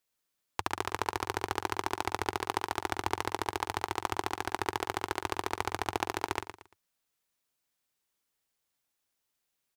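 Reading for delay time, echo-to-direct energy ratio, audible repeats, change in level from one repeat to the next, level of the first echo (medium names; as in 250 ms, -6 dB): 115 ms, -9.5 dB, 3, -10.5 dB, -10.0 dB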